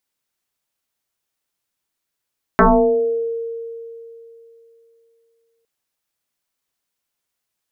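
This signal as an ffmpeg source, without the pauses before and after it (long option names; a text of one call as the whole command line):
ffmpeg -f lavfi -i "aevalsrc='0.447*pow(10,-3*t/3.1)*sin(2*PI*460*t+5.8*pow(10,-3*t/0.85)*sin(2*PI*0.47*460*t))':duration=3.06:sample_rate=44100" out.wav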